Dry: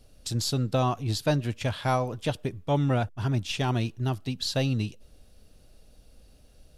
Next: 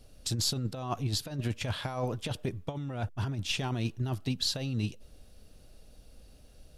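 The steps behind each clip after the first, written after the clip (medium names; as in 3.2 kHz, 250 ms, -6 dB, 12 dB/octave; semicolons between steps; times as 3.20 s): compressor with a negative ratio -28 dBFS, ratio -0.5; trim -2.5 dB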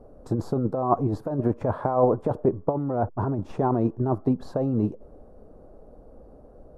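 FFT filter 110 Hz 0 dB, 420 Hz +13 dB, 1.1 kHz +9 dB, 3 kHz -29 dB, 9.1 kHz -23 dB; trim +3 dB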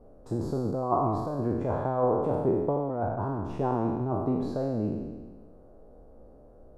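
spectral sustain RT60 1.42 s; trim -7 dB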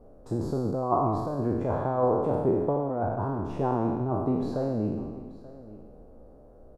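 delay 883 ms -18.5 dB; trim +1 dB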